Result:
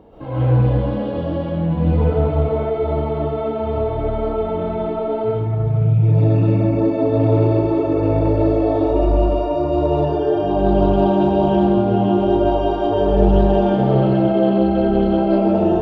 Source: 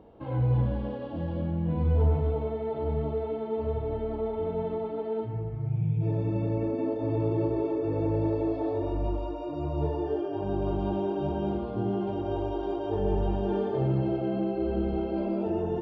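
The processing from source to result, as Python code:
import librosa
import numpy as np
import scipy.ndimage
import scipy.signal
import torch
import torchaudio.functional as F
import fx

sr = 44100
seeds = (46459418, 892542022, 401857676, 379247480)

y = fx.echo_thinned(x, sr, ms=553, feedback_pct=30, hz=420.0, wet_db=-11.5)
y = fx.rev_freeverb(y, sr, rt60_s=0.5, hf_ratio=0.65, predelay_ms=90, drr_db=-6.5)
y = fx.doppler_dist(y, sr, depth_ms=0.12)
y = y * 10.0 ** (6.0 / 20.0)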